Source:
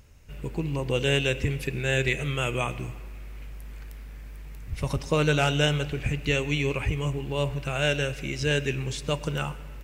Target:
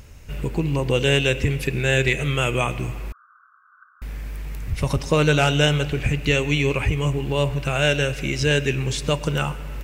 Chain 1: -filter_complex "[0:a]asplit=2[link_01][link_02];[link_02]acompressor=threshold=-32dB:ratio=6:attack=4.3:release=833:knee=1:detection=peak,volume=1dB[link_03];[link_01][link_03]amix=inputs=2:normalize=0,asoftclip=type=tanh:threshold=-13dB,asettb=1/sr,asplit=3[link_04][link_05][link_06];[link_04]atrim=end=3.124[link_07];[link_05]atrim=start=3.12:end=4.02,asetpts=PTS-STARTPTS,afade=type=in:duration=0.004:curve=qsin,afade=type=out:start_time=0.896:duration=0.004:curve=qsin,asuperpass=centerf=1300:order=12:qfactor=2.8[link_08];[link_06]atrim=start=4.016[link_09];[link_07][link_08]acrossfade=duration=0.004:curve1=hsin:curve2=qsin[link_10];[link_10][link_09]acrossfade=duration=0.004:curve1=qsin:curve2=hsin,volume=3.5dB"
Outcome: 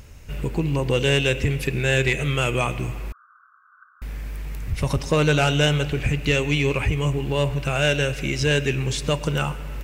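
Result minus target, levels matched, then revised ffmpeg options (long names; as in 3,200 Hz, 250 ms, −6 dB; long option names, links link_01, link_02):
soft clipping: distortion +14 dB
-filter_complex "[0:a]asplit=2[link_01][link_02];[link_02]acompressor=threshold=-32dB:ratio=6:attack=4.3:release=833:knee=1:detection=peak,volume=1dB[link_03];[link_01][link_03]amix=inputs=2:normalize=0,asoftclip=type=tanh:threshold=-5dB,asettb=1/sr,asplit=3[link_04][link_05][link_06];[link_04]atrim=end=3.124[link_07];[link_05]atrim=start=3.12:end=4.02,asetpts=PTS-STARTPTS,afade=type=in:duration=0.004:curve=qsin,afade=type=out:start_time=0.896:duration=0.004:curve=qsin,asuperpass=centerf=1300:order=12:qfactor=2.8[link_08];[link_06]atrim=start=4.016[link_09];[link_07][link_08]acrossfade=duration=0.004:curve1=hsin:curve2=qsin[link_10];[link_10][link_09]acrossfade=duration=0.004:curve1=qsin:curve2=hsin,volume=3.5dB"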